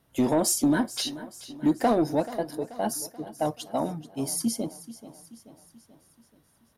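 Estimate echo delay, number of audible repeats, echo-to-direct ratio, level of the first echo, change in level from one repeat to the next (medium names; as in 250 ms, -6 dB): 433 ms, 4, -14.5 dB, -16.0 dB, -5.5 dB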